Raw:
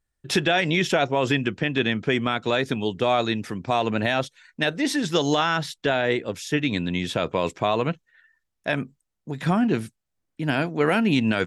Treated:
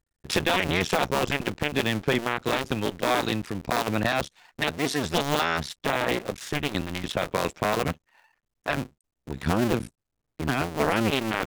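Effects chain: cycle switcher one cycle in 2, muted

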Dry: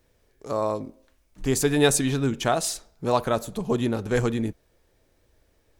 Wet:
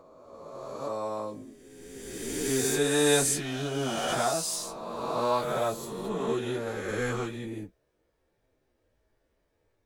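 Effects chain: spectral swells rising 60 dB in 1.34 s; low shelf 150 Hz -7.5 dB; plain phase-vocoder stretch 1.7×; mismatched tape noise reduction decoder only; gain -5 dB

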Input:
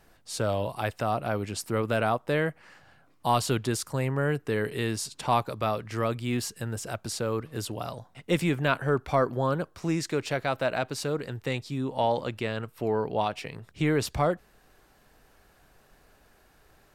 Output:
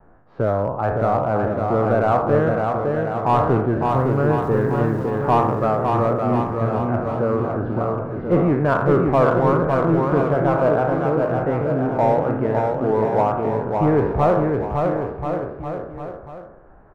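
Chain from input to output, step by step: spectral trails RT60 0.73 s; LPF 1300 Hz 24 dB/oct; in parallel at -10.5 dB: wavefolder -21 dBFS; on the sum: vibrato 0.73 Hz 18 cents; 3.89–5.1 sample gate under -49 dBFS; on a send: bouncing-ball echo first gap 0.56 s, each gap 0.85×, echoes 5; on the sum: gain +5 dB

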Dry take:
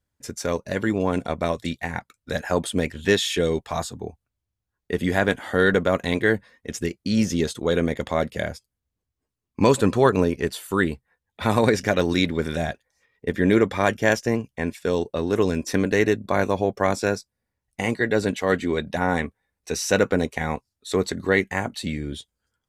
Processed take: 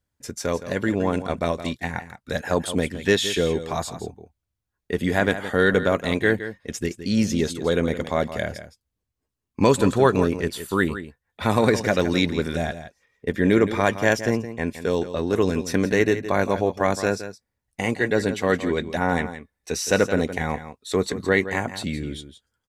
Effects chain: echo 0.167 s -12 dB

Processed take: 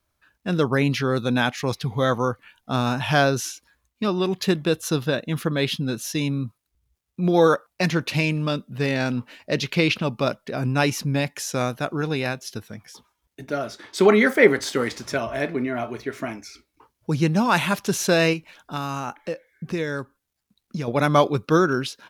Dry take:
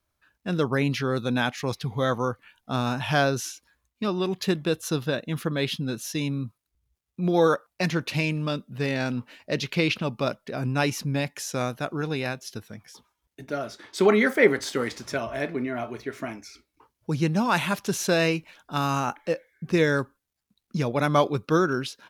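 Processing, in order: 18.33–20.88 compressor 2:1, threshold -34 dBFS, peak gain reduction 10 dB; gain +3.5 dB

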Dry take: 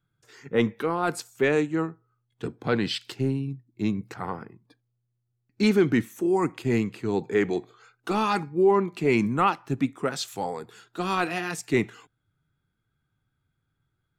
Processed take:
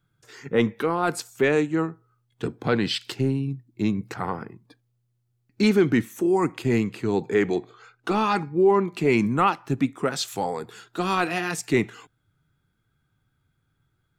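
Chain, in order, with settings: 7.55–8.66 high shelf 8100 Hz -10.5 dB; in parallel at -1.5 dB: compressor, threshold -31 dBFS, peak gain reduction 14.5 dB

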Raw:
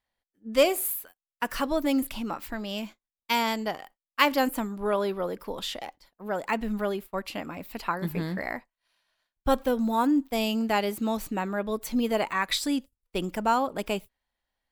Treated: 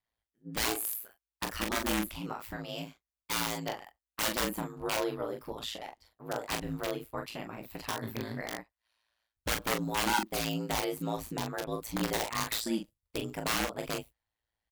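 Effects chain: dynamic EQ 150 Hz, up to -4 dB, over -40 dBFS, Q 1.4; wrapped overs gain 19.5 dB; early reflections 22 ms -9.5 dB, 42 ms -5.5 dB; ring modulator 56 Hz; gain -3.5 dB

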